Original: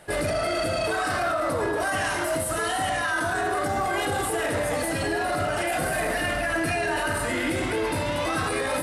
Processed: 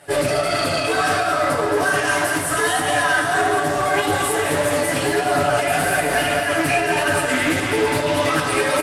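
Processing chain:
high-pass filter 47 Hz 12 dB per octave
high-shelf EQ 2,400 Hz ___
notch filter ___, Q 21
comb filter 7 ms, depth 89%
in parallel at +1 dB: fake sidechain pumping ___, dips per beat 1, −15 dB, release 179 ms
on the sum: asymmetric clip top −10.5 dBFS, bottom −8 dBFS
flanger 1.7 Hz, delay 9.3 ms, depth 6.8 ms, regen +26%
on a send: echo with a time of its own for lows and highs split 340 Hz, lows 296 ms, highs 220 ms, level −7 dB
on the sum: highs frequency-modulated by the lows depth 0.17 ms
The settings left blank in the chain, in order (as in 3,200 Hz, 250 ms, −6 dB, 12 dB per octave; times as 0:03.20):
+3.5 dB, 4,000 Hz, 150 BPM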